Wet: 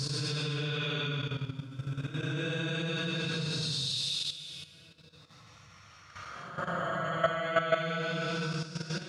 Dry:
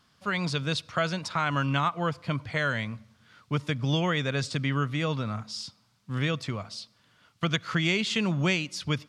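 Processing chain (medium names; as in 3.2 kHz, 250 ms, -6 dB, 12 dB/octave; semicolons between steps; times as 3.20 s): Paulstretch 15×, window 0.10 s, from 0.51 s; level held to a coarse grid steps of 11 dB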